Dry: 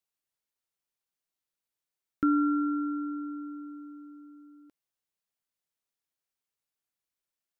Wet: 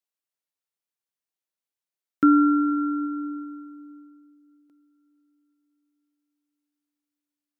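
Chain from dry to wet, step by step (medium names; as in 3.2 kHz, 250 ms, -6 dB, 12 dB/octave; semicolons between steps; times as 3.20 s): high-pass 150 Hz; echo that smears into a reverb 482 ms, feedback 42%, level -16 dB; upward expansion 1.5:1, over -47 dBFS; trim +9 dB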